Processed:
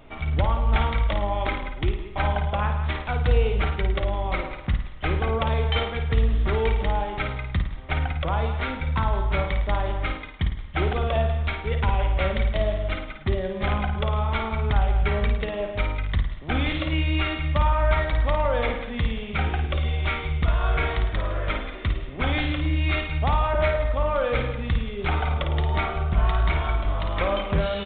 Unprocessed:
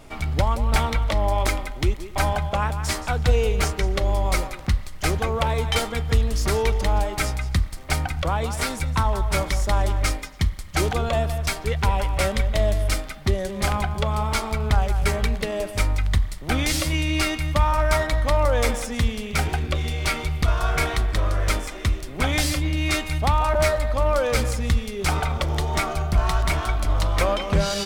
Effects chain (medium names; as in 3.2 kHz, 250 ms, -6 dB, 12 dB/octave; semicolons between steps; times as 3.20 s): flutter echo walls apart 9.2 m, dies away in 0.51 s; resampled via 8 kHz; trim -3 dB